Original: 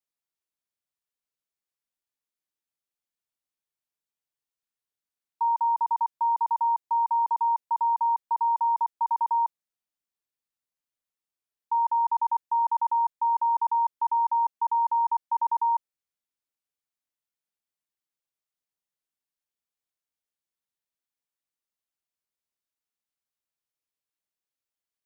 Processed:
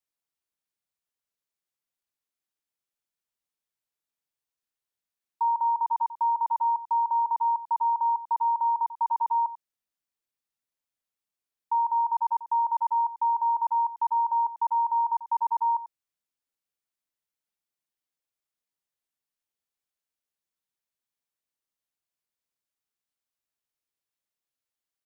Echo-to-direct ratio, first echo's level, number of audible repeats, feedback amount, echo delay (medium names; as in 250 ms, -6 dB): -15.0 dB, -15.0 dB, 1, no regular repeats, 92 ms